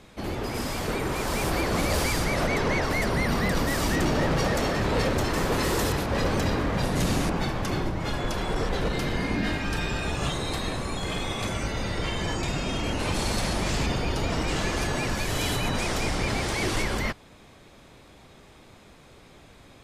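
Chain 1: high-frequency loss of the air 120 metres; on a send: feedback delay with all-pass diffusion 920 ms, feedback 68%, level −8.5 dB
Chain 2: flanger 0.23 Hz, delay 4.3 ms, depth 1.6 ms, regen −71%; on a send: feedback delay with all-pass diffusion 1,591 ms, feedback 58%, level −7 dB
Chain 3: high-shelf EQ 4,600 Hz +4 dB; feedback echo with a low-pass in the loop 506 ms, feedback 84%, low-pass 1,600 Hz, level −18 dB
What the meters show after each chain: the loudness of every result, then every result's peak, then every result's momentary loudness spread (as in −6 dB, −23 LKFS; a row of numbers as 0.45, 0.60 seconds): −27.5, −31.0, −26.5 LKFS; −13.0, −15.5, −14.5 dBFS; 9, 8, 6 LU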